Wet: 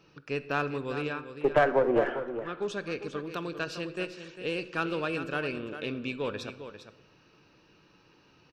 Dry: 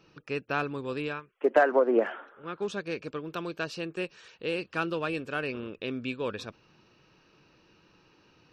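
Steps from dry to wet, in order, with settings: one diode to ground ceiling -18 dBFS; on a send: echo 0.4 s -10.5 dB; on the sum: shoebox room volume 710 m³, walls mixed, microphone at 0.33 m

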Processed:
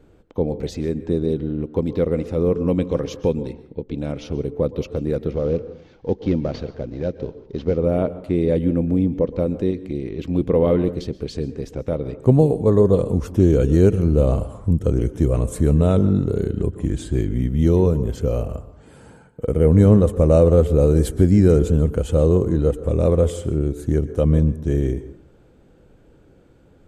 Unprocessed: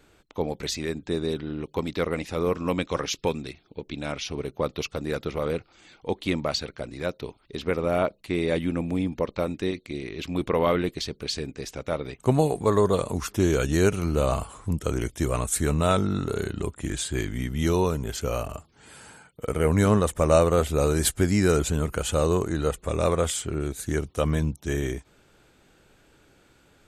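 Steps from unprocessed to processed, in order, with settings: 5.31–7.78 CVSD 32 kbps; tilt shelf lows +9.5 dB, about 870 Hz; plate-style reverb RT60 0.57 s, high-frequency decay 0.5×, pre-delay 0.11 s, DRR 14.5 dB; dynamic EQ 1100 Hz, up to -5 dB, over -35 dBFS, Q 0.86; small resonant body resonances 500/3100 Hz, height 6 dB

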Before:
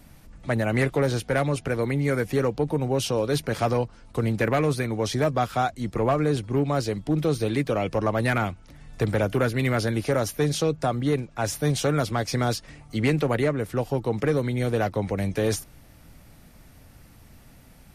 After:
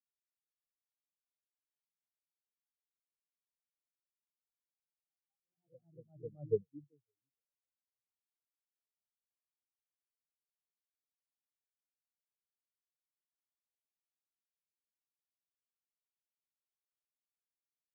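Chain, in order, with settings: Doppler pass-by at 6.54, 18 m/s, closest 1.2 m; echoes that change speed 85 ms, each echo +1 st, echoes 3; spectral expander 4:1; gain -5 dB

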